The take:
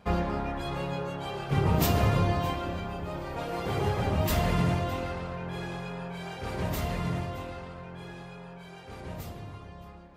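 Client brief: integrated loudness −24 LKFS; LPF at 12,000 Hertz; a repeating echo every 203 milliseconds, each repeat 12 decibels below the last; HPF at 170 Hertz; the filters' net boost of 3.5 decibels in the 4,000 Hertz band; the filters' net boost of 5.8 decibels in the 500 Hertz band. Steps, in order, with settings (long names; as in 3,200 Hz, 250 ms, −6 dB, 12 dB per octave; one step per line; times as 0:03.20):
high-pass filter 170 Hz
low-pass filter 12,000 Hz
parametric band 500 Hz +7.5 dB
parametric band 4,000 Hz +4.5 dB
repeating echo 203 ms, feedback 25%, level −12 dB
level +5 dB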